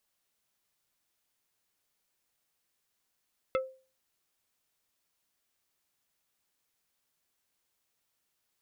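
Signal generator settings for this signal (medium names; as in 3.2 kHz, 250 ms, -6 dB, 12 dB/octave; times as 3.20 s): wood hit plate, lowest mode 524 Hz, decay 0.37 s, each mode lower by 4 dB, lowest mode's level -23.5 dB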